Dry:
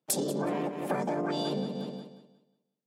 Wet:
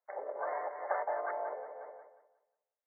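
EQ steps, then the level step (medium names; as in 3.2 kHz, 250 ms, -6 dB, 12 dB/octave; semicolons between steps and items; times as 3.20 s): steep high-pass 560 Hz 36 dB/octave; brick-wall FIR low-pass 2.2 kHz; 0.0 dB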